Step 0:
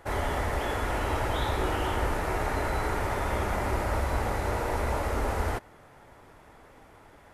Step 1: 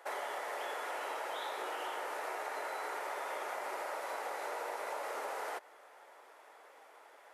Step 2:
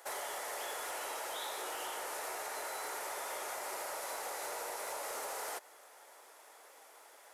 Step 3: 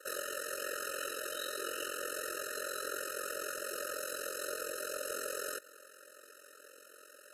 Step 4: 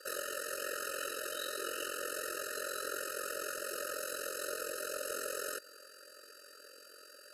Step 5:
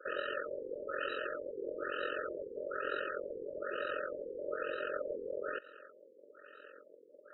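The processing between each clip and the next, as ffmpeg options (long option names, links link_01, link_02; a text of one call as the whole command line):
ffmpeg -i in.wav -af "highpass=frequency=460:width=0.5412,highpass=frequency=460:width=1.3066,acompressor=threshold=-34dB:ratio=6,volume=-2.5dB" out.wav
ffmpeg -i in.wav -af "bass=frequency=250:gain=2,treble=frequency=4000:gain=14,asoftclip=type=tanh:threshold=-30.5dB,volume=-1.5dB" out.wav
ffmpeg -i in.wav -af "aeval=exprs='val(0)*sin(2*PI*22*n/s)':channel_layout=same,afftfilt=real='re*eq(mod(floor(b*sr/1024/620),2),0)':imag='im*eq(mod(floor(b*sr/1024/620),2),0)':win_size=1024:overlap=0.75,volume=8dB" out.wav
ffmpeg -i in.wav -af "aeval=exprs='val(0)+0.00112*sin(2*PI*4700*n/s)':channel_layout=same" out.wav
ffmpeg -i in.wav -af "afftfilt=real='re*lt(b*sr/1024,520*pow(4000/520,0.5+0.5*sin(2*PI*1.1*pts/sr)))':imag='im*lt(b*sr/1024,520*pow(4000/520,0.5+0.5*sin(2*PI*1.1*pts/sr)))':win_size=1024:overlap=0.75,volume=3.5dB" out.wav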